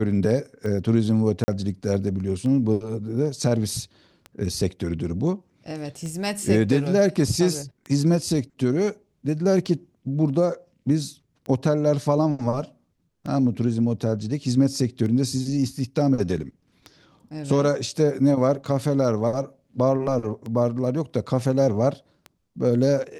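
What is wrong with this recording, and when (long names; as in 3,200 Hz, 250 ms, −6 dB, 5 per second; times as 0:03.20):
scratch tick 33 1/3 rpm −22 dBFS
0:01.44–0:01.48: drop-out 40 ms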